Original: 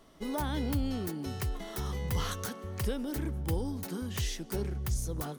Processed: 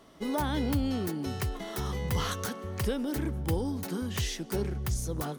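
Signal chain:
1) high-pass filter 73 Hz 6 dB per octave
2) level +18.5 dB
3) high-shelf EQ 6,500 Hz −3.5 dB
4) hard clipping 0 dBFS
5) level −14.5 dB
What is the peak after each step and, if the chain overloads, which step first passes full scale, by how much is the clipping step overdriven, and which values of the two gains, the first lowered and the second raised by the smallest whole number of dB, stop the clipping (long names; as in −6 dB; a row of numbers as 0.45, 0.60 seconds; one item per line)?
−19.5, −1.0, −2.0, −2.0, −16.5 dBFS
no step passes full scale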